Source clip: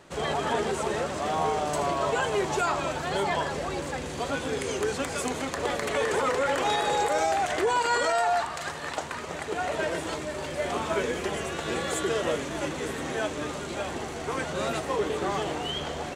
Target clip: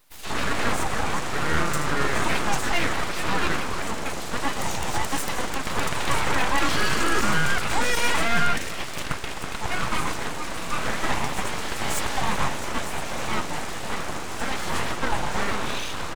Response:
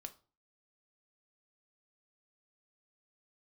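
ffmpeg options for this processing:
-filter_complex "[0:a]acrossover=split=150|3200[link_01][link_02][link_03];[link_02]adelay=130[link_04];[link_01]adelay=440[link_05];[link_05][link_04][link_03]amix=inputs=3:normalize=0,asplit=2[link_06][link_07];[1:a]atrim=start_sample=2205,asetrate=52920,aresample=44100[link_08];[link_07][link_08]afir=irnorm=-1:irlink=0,volume=8dB[link_09];[link_06][link_09]amix=inputs=2:normalize=0,aeval=exprs='abs(val(0))':channel_layout=same"

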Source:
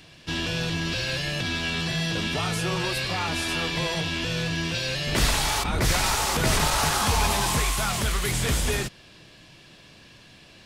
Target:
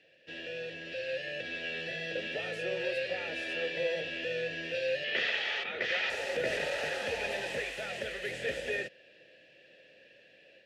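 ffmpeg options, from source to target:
ffmpeg -i in.wav -filter_complex "[0:a]asplit=3[link_01][link_02][link_03];[link_01]bandpass=frequency=530:width_type=q:width=8,volume=0dB[link_04];[link_02]bandpass=frequency=1840:width_type=q:width=8,volume=-6dB[link_05];[link_03]bandpass=frequency=2480:width_type=q:width=8,volume=-9dB[link_06];[link_04][link_05][link_06]amix=inputs=3:normalize=0,dynaudnorm=framelen=880:gausssize=3:maxgain=5dB,asettb=1/sr,asplit=3[link_07][link_08][link_09];[link_07]atrim=end=5.044[link_10];[link_08]atrim=start=5.04:end=6.1,asetpts=PTS-STARTPTS,afade=type=in:duration=0.004:curve=qsin,afade=type=out:start_time=1.056:duration=0.004:curve=qsin,highpass=150,equalizer=frequency=150:width_type=q:width=4:gain=-8,equalizer=frequency=290:width_type=q:width=4:gain=-9,equalizer=frequency=560:width_type=q:width=4:gain=-8,equalizer=frequency=1200:width_type=q:width=4:gain=9,equalizer=frequency=2100:width_type=q:width=4:gain=5,equalizer=frequency=3200:width_type=q:width=4:gain=8,lowpass=frequency=5600:width=0.5412,lowpass=frequency=5600:width=1.3066[link_11];[link_09]atrim=start=6.096[link_12];[link_10][link_11]acrossfade=duration=0.004:curve1=hsin:curve2=qsin[link_13];[link_13][link_12]acrossfade=duration=0.004:curve1=qsin:curve2=hsin" out.wav

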